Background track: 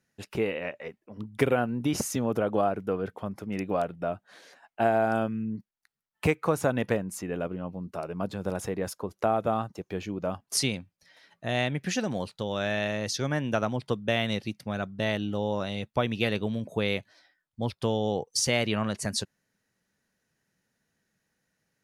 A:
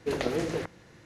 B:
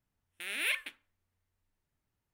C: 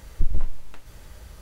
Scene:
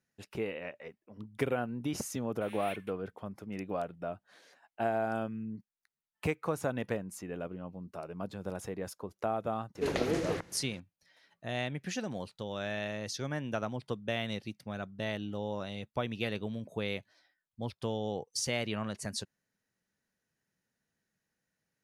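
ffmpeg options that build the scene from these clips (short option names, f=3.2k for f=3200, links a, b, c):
-filter_complex "[0:a]volume=-7.5dB[a];[2:a]atrim=end=2.33,asetpts=PTS-STARTPTS,volume=-13dB,afade=t=in:d=0.004:c=hsin,afade=t=out:st=2.326:d=0.004:c=hsin,adelay=2010[b];[1:a]atrim=end=1.05,asetpts=PTS-STARTPTS,volume=-2dB,afade=t=in:d=0.004:c=hsin,afade=t=out:st=1.046:d=0.004:c=hsin,adelay=9750[c];[a][b][c]amix=inputs=3:normalize=0"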